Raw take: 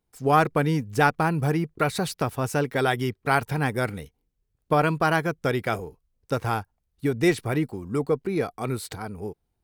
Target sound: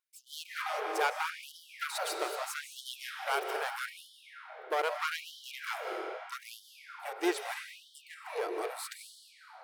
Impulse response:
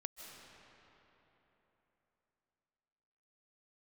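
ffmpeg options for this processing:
-filter_complex "[0:a]aeval=exprs='clip(val(0),-1,0.0447)':c=same[a];[1:a]atrim=start_sample=2205[b];[a][b]afir=irnorm=-1:irlink=0,afftfilt=real='re*gte(b*sr/1024,310*pow(3000/310,0.5+0.5*sin(2*PI*0.79*pts/sr)))':imag='im*gte(b*sr/1024,310*pow(3000/310,0.5+0.5*sin(2*PI*0.79*pts/sr)))':win_size=1024:overlap=0.75"

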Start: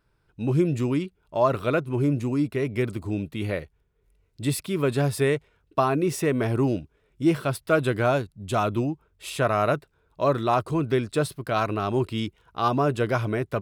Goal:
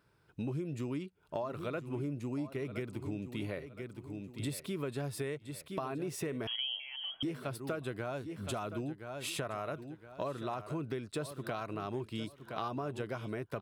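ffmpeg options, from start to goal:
-filter_complex "[0:a]highpass=92,alimiter=limit=-15dB:level=0:latency=1:release=483,aecho=1:1:1017|2034:0.2|0.0439,asettb=1/sr,asplit=3[a][b][c];[a]atrim=end=6.474[d];[b]atrim=start=6.47:end=7.23,asetpts=PTS-STARTPTS,afade=t=in:d=0.004:c=qsin,afade=t=out:st=0.756:d=0.004:c=qsin,lowpass=f=2.9k:t=q:w=0.5098,lowpass=f=2.9k:t=q:w=0.6013,lowpass=f=2.9k:t=q:w=0.9,lowpass=f=2.9k:t=q:w=2.563,afreqshift=-3400[e];[c]atrim=start=7.226[f];[d][e]acrossfade=d=0.004:c1=hsin:c2=qsin[g];[g][f]acrossfade=d=0.004:c1=qsin:c2=hsin,acompressor=threshold=-38dB:ratio=4,volume=1dB"

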